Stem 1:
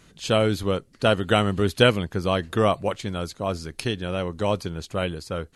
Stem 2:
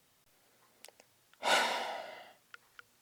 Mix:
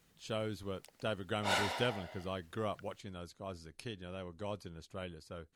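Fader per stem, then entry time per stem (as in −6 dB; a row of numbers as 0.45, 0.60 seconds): −17.5, −4.5 decibels; 0.00, 0.00 seconds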